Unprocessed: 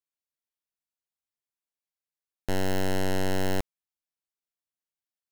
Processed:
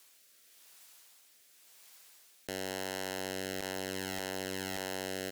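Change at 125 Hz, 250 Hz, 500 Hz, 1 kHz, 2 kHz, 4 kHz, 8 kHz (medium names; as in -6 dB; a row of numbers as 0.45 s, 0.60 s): -13.5 dB, -8.0 dB, -5.5 dB, -5.0 dB, -1.5 dB, +0.5 dB, +1.5 dB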